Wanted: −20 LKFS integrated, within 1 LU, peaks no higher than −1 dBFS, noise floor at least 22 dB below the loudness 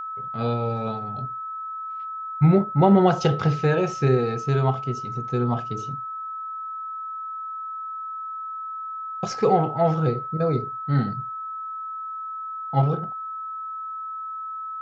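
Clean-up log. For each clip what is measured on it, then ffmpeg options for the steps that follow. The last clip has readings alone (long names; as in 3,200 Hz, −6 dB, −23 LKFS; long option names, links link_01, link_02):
interfering tone 1,300 Hz; level of the tone −30 dBFS; integrated loudness −25.0 LKFS; sample peak −5.5 dBFS; target loudness −20.0 LKFS
→ -af "bandreject=frequency=1300:width=30"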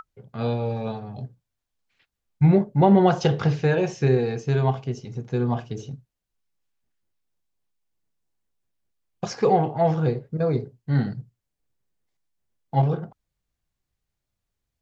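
interfering tone none found; integrated loudness −23.0 LKFS; sample peak −6.0 dBFS; target loudness −20.0 LKFS
→ -af "volume=3dB"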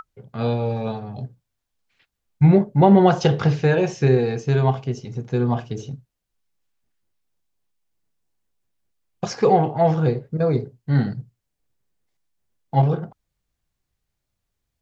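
integrated loudness −20.0 LKFS; sample peak −3.0 dBFS; background noise floor −80 dBFS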